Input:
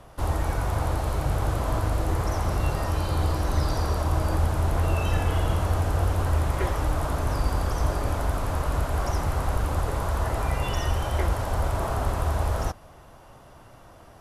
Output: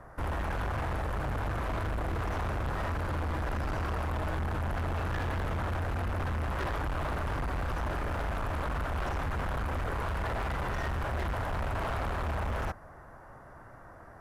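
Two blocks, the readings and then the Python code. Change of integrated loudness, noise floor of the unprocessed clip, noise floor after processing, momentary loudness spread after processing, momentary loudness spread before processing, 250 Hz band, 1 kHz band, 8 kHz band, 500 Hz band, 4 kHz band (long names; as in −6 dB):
−7.0 dB, −49 dBFS, −50 dBFS, 3 LU, 3 LU, −5.5 dB, −5.0 dB, −14.0 dB, −6.5 dB, −7.5 dB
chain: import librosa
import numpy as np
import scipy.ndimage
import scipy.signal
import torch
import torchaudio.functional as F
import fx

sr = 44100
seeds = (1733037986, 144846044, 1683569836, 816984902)

y = fx.high_shelf_res(x, sr, hz=2300.0, db=-9.5, q=3.0)
y = np.clip(10.0 ** (28.0 / 20.0) * y, -1.0, 1.0) / 10.0 ** (28.0 / 20.0)
y = y * 10.0 ** (-2.0 / 20.0)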